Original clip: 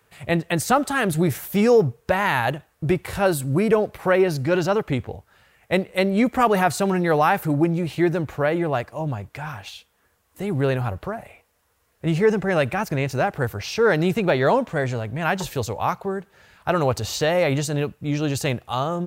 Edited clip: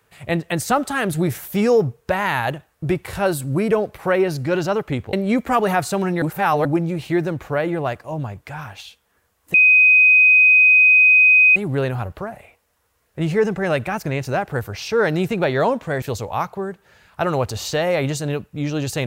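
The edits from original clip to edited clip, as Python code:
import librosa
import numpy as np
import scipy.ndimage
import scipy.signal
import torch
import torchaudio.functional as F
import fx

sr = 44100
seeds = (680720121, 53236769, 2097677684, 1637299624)

y = fx.edit(x, sr, fx.cut(start_s=5.13, length_s=0.88),
    fx.reverse_span(start_s=7.1, length_s=0.43),
    fx.insert_tone(at_s=10.42, length_s=2.02, hz=2510.0, db=-8.5),
    fx.cut(start_s=14.88, length_s=0.62), tone=tone)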